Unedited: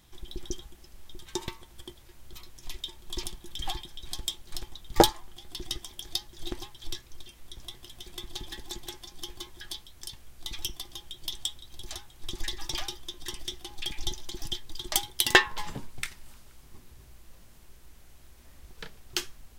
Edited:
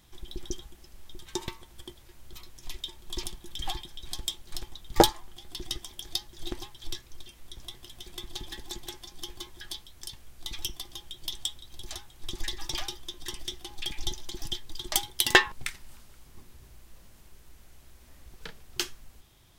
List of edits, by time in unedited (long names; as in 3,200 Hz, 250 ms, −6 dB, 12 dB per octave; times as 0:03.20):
0:15.52–0:15.89: remove